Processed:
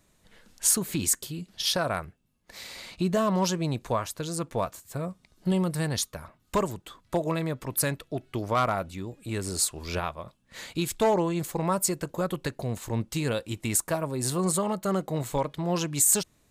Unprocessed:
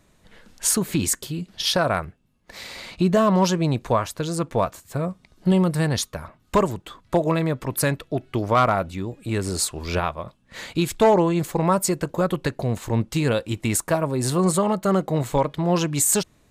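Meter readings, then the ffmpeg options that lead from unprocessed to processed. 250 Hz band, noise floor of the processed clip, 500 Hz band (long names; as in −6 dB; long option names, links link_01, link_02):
−7.0 dB, −67 dBFS, −7.0 dB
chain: -af "highshelf=frequency=4800:gain=7.5,volume=-7dB"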